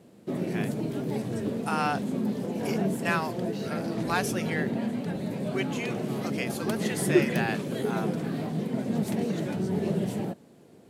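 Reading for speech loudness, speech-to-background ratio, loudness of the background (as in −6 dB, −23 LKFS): −34.0 LKFS, −3.5 dB, −30.5 LKFS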